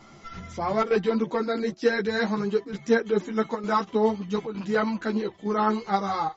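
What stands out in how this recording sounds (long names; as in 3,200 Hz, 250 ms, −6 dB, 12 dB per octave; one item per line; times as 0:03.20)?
chopped level 1.1 Hz, depth 65%, duty 90%
a shimmering, thickened sound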